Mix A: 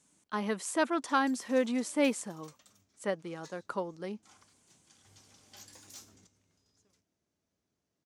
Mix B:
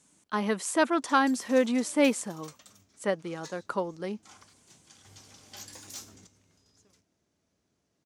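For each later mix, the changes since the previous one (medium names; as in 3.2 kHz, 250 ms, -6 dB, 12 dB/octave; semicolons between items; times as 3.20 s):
speech +4.5 dB; background +7.5 dB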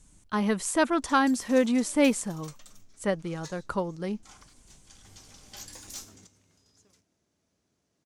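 speech: remove high-pass 240 Hz 12 dB/octave; master: add peaking EQ 10 kHz +2.5 dB 1.4 oct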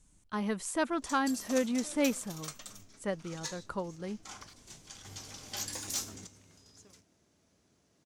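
speech -7.0 dB; background +6.0 dB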